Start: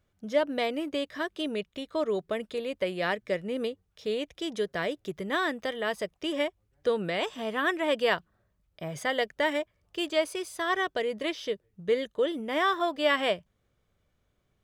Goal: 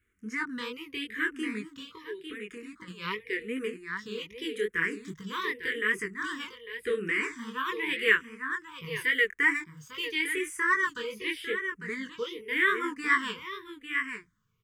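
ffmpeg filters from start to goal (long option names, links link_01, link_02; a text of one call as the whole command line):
ffmpeg -i in.wav -filter_complex "[0:a]asettb=1/sr,asplit=3[link_01][link_02][link_03];[link_01]atrim=end=1.874[link_04];[link_02]atrim=start=1.87:end=2.88,asetpts=PTS-STARTPTS,afade=type=in:duration=0.004:curve=qsin,afade=type=out:start_time=1.006:duration=0.004:curve=qsin,acompressor=threshold=-37dB:ratio=5[link_05];[link_03]atrim=start=2.876[link_06];[link_04][link_05]acrossfade=duration=0.004:curve1=hsin:curve2=qsin[link_07];[link_07][link_06]acrossfade=duration=0.004:curve1=qsin:curve2=hsin,asettb=1/sr,asplit=3[link_08][link_09][link_10];[link_08]atrim=end=8.924[link_11];[link_09]atrim=start=8.92:end=9.41,asetpts=PTS-STARTPTS,afade=type=in:duration=0.004:curve=qsin,afade=type=out:start_time=0.486:duration=0.004:curve=qsin,acrusher=bits=8:mix=0:aa=0.5[link_12];[link_10]atrim=start=9.406[link_13];[link_11][link_12]acrossfade=duration=0.004:curve1=hsin:curve2=qsin[link_14];[link_14][link_13]acrossfade=duration=0.004:curve1=qsin:curve2=hsin,equalizer=frequency=2000:width_type=o:width=1:gain=11,equalizer=frequency=4000:width_type=o:width=1:gain=-7,equalizer=frequency=8000:width_type=o:width=1:gain=3,flanger=delay=18.5:depth=7.1:speed=2.5,asuperstop=centerf=680:order=12:qfactor=1.4,highshelf=frequency=6500:gain=4.5,aecho=1:1:850:0.355,asplit=2[link_15][link_16];[link_16]afreqshift=-0.87[link_17];[link_15][link_17]amix=inputs=2:normalize=1,volume=2.5dB" out.wav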